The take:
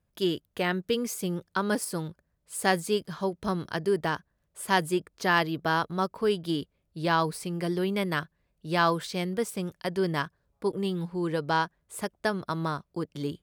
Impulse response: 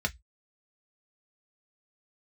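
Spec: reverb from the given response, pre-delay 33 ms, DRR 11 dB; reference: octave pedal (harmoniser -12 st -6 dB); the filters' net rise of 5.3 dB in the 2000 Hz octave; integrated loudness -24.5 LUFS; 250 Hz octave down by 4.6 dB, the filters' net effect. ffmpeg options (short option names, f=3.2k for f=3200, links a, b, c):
-filter_complex "[0:a]equalizer=f=250:t=o:g=-8,equalizer=f=2k:t=o:g=7,asplit=2[a][b];[1:a]atrim=start_sample=2205,adelay=33[c];[b][c]afir=irnorm=-1:irlink=0,volume=-18dB[d];[a][d]amix=inputs=2:normalize=0,asplit=2[e][f];[f]asetrate=22050,aresample=44100,atempo=2,volume=-6dB[g];[e][g]amix=inputs=2:normalize=0,volume=3dB"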